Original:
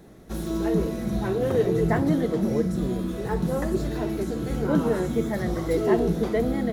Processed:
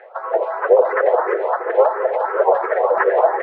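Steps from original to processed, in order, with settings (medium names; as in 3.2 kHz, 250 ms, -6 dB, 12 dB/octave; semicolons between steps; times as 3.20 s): median filter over 15 samples; reverb removal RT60 0.83 s; Chebyshev high-pass 490 Hz, order 8; treble shelf 8.5 kHz +7 dB; harmony voices -5 st -17 dB, -4 st -9 dB, +3 st -12 dB; LFO low-pass saw down 1.2 Hz 800–1800 Hz; time stretch by phase-locked vocoder 0.51×; distance through air 170 m; feedback delay 552 ms, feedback 49%, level -12 dB; on a send at -7 dB: reverberation RT60 2.5 s, pre-delay 76 ms; on the sum: loudness maximiser +21 dB; barber-pole phaser +2.9 Hz; trim -1 dB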